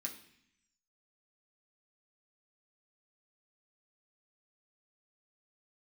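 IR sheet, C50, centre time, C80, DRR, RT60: 10.0 dB, 16 ms, 13.5 dB, −0.5 dB, 0.65 s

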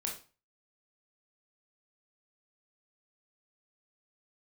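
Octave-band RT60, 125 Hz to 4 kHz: 0.40, 0.40, 0.35, 0.35, 0.35, 0.30 seconds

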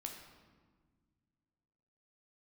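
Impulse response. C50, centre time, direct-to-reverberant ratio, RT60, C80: 5.0 dB, 38 ms, 1.5 dB, 1.6 s, 7.0 dB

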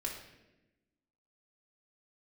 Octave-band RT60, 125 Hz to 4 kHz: 1.3, 1.6, 1.2, 0.80, 0.95, 0.80 seconds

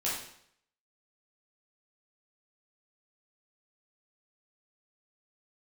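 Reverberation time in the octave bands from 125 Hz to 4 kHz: 0.70, 0.65, 0.70, 0.65, 0.65, 0.65 seconds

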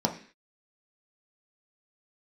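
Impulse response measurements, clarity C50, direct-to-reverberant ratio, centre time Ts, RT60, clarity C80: 11.0 dB, 1.5 dB, 13 ms, 0.45 s, 15.5 dB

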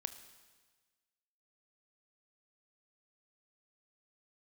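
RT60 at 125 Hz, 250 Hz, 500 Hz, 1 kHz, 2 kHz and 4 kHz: 1.5, 1.4, 1.4, 1.4, 1.4, 1.4 seconds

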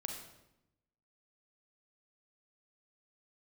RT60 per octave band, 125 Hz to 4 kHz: 1.2, 1.1, 0.90, 0.85, 0.75, 0.70 seconds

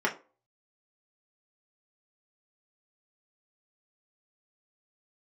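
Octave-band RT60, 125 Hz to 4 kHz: 0.25, 0.35, 0.40, 0.35, 0.25, 0.20 seconds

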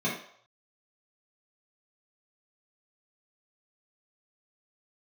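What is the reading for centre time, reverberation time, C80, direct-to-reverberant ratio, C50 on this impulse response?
36 ms, 0.65 s, 9.0 dB, −8.5 dB, 4.0 dB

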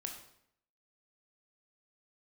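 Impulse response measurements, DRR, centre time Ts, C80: 2.0 dB, 25 ms, 9.5 dB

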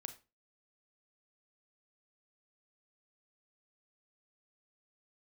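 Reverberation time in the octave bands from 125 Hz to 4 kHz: 0.35, 0.35, 0.30, 0.30, 0.25, 0.25 seconds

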